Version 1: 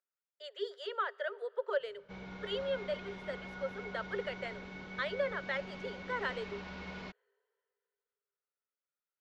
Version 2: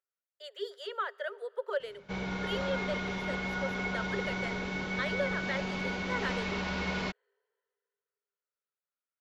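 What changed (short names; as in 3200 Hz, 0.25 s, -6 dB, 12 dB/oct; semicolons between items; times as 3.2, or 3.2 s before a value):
background +11.0 dB; master: remove air absorption 70 m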